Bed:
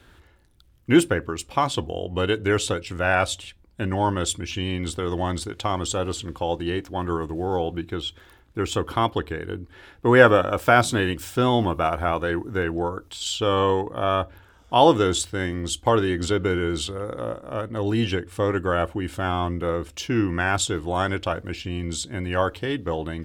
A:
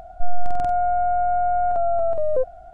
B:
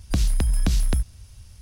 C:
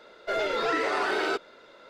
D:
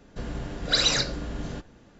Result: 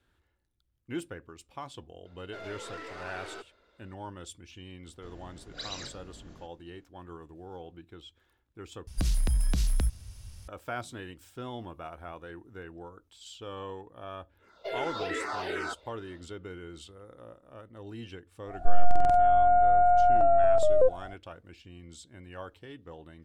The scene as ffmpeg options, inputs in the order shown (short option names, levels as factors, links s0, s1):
-filter_complex "[3:a]asplit=2[s0][s1];[0:a]volume=0.106[s2];[s0]aeval=exprs='(tanh(15.8*val(0)+0.4)-tanh(0.4))/15.8':c=same[s3];[2:a]alimiter=limit=0.119:level=0:latency=1:release=58[s4];[s1]asplit=2[s5][s6];[s6]afreqshift=-2.6[s7];[s5][s7]amix=inputs=2:normalize=1[s8];[s2]asplit=2[s9][s10];[s9]atrim=end=8.874[s11];[s4]atrim=end=1.61,asetpts=PTS-STARTPTS,volume=0.891[s12];[s10]atrim=start=10.476[s13];[s3]atrim=end=1.89,asetpts=PTS-STARTPTS,volume=0.224,afade=t=in:d=0.004:c=hsin,afade=t=out:st=1.886:d=0.004:c=hsin,adelay=2050[s14];[4:a]atrim=end=1.99,asetpts=PTS-STARTPTS,volume=0.133,afade=t=in:d=0.004:c=hsin,afade=t=out:st=1.986:d=0.004:c=hsin,adelay=4860[s15];[s8]atrim=end=1.89,asetpts=PTS-STARTPTS,volume=0.596,afade=t=in:d=0.1,afade=t=out:st=1.79:d=0.1,adelay=14370[s16];[1:a]atrim=end=2.73,asetpts=PTS-STARTPTS,volume=0.944,afade=t=in:d=0.1,afade=t=out:st=2.63:d=0.1,adelay=18450[s17];[s11][s12]acrossfade=d=0.004:c1=hsin:c2=hsin[s18];[s18][s13]acrossfade=d=0.004:c1=hsin:c2=hsin[s19];[s19][s14][s15][s16][s17]amix=inputs=5:normalize=0"